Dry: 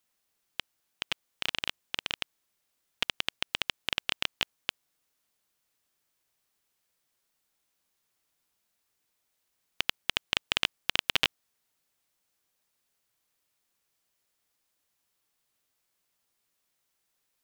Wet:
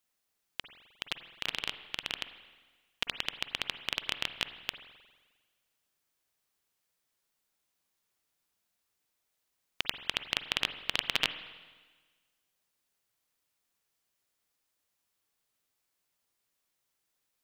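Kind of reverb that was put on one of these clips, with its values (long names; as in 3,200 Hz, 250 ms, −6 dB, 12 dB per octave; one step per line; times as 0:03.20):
spring reverb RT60 1.4 s, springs 44/51 ms, chirp 35 ms, DRR 10 dB
level −3 dB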